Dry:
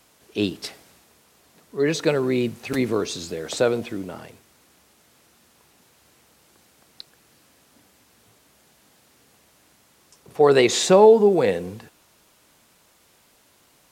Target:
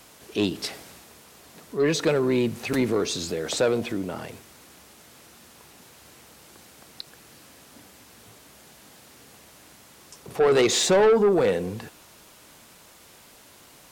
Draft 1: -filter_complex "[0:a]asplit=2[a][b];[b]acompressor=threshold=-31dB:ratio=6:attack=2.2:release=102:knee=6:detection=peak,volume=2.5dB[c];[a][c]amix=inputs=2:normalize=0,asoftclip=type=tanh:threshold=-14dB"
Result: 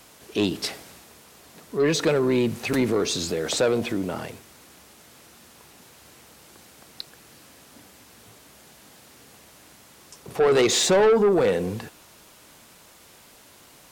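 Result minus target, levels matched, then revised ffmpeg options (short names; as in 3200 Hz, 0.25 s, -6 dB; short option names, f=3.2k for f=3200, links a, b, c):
compressor: peak gain reduction -9 dB
-filter_complex "[0:a]asplit=2[a][b];[b]acompressor=threshold=-41.5dB:ratio=6:attack=2.2:release=102:knee=6:detection=peak,volume=2.5dB[c];[a][c]amix=inputs=2:normalize=0,asoftclip=type=tanh:threshold=-14dB"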